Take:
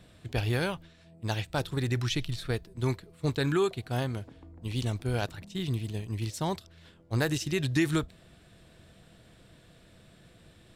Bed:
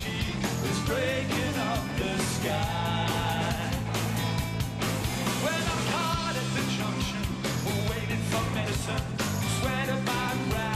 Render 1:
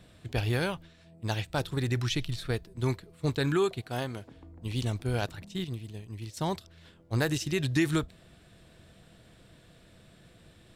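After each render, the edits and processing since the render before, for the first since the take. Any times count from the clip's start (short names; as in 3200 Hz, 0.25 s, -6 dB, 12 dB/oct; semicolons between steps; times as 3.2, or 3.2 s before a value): 3.81–4.29 low shelf 150 Hz -10 dB; 5.64–6.37 gate -28 dBFS, range -7 dB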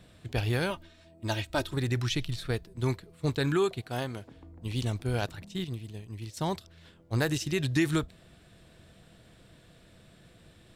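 0.7–1.74 comb 3.2 ms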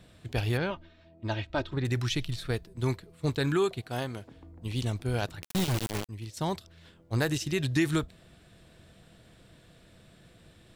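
0.57–1.85 air absorption 190 m; 5.42–6.09 companded quantiser 2-bit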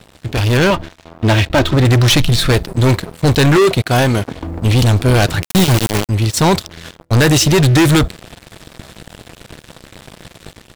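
sample leveller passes 5; AGC gain up to 8 dB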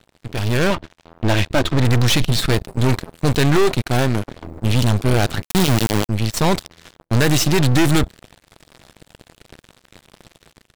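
half-wave gain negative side -12 dB; power-law curve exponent 1.4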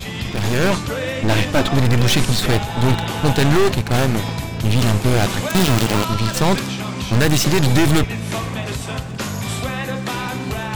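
add bed +4 dB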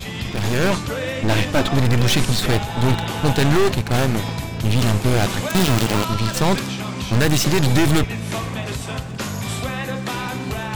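gain -1.5 dB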